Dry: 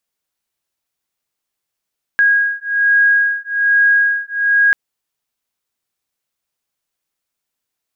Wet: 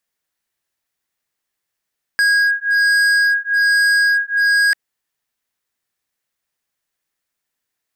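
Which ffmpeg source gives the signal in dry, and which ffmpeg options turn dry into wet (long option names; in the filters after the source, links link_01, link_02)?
-f lavfi -i "aevalsrc='0.2*(sin(2*PI*1640*t)+sin(2*PI*1641.2*t))':duration=2.54:sample_rate=44100"
-af "equalizer=frequency=1800:width_type=o:width=0.38:gain=6.5,volume=13dB,asoftclip=hard,volume=-13dB"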